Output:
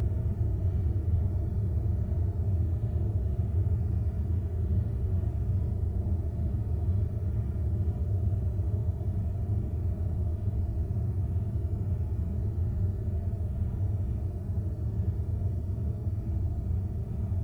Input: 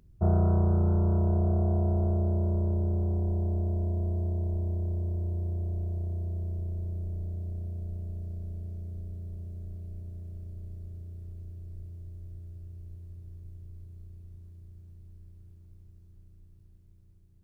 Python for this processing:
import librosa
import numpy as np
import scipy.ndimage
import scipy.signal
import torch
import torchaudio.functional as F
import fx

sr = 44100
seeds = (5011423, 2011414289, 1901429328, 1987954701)

y = fx.leveller(x, sr, passes=2)
y = fx.paulstretch(y, sr, seeds[0], factor=13.0, window_s=0.05, from_s=7.12)
y = fx.notch_comb(y, sr, f0_hz=530.0)